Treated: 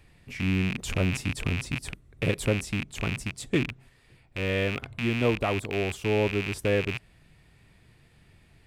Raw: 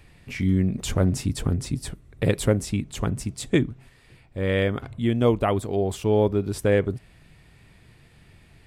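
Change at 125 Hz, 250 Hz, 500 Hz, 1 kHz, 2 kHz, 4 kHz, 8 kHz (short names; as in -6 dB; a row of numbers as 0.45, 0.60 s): -5.0, -5.0, -5.0, -4.0, +3.5, +0.5, -4.5 dB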